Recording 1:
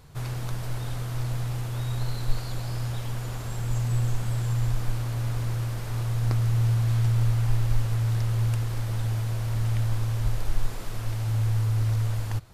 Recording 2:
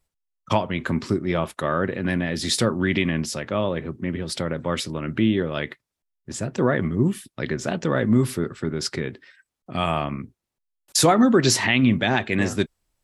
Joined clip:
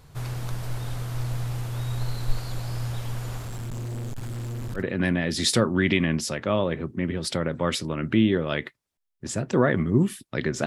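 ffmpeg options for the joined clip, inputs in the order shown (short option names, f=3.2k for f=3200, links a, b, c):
-filter_complex "[0:a]asettb=1/sr,asplit=3[a][b][c];[a]atrim=end=3.394[d];[b]atrim=start=3.39:end=4.84,asetpts=PTS-STARTPTS,afade=t=in:d=0.004:c=qsin,afade=t=out:st=1.446:d=0.004:c=qsin,asoftclip=type=hard:threshold=-30.5dB[e];[c]atrim=start=4.836[f];[d][e]acrossfade=d=0.004:c1=hsin:c2=qsin[g];[g][f]acrossfade=d=0.004:c1=qsin:c2=hsin,apad=whole_dur=10.66,atrim=end=10.66,atrim=end=4.84,asetpts=PTS-STARTPTS[h];[1:a]atrim=start=1.79:end=7.71,asetpts=PTS-STARTPTS[i];[h][i]acrossfade=d=0.1:c1=tri:c2=tri"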